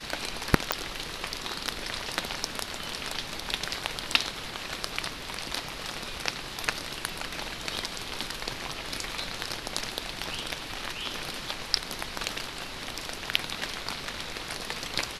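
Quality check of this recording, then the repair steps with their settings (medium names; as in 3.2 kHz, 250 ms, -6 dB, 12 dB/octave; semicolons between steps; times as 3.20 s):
0.72 s: pop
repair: de-click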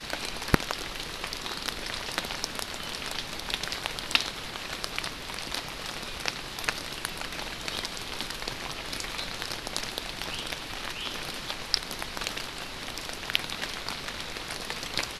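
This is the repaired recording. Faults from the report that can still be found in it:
nothing left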